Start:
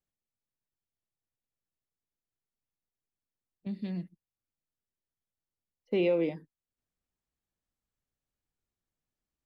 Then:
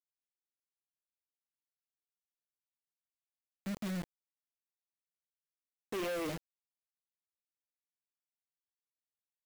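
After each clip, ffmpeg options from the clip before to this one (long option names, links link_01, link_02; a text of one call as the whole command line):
ffmpeg -i in.wav -af "aeval=exprs='(tanh(56.2*val(0)+0.2)-tanh(0.2))/56.2':channel_layout=same,acrusher=bits=6:mix=0:aa=0.000001,volume=1dB" out.wav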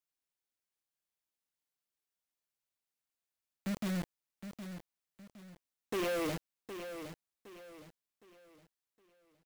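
ffmpeg -i in.wav -af "aecho=1:1:764|1528|2292|3056:0.316|0.111|0.0387|0.0136,volume=2.5dB" out.wav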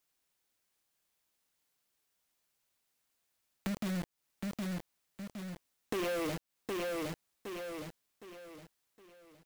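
ffmpeg -i in.wav -af "acompressor=threshold=-47dB:ratio=5,volume=11dB" out.wav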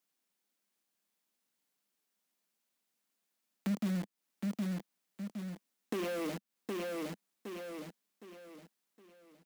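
ffmpeg -i in.wav -af "lowshelf=frequency=140:width_type=q:width=3:gain=-12.5,volume=-3.5dB" out.wav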